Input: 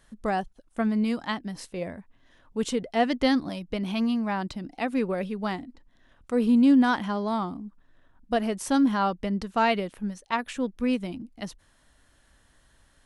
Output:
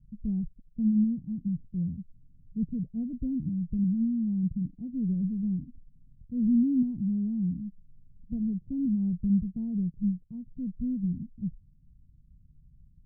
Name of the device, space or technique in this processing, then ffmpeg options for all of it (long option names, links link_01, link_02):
the neighbour's flat through the wall: -af "lowpass=frequency=170:width=0.5412,lowpass=frequency=170:width=1.3066,equalizer=frequency=160:width_type=o:width=0.84:gain=7,volume=6.5dB"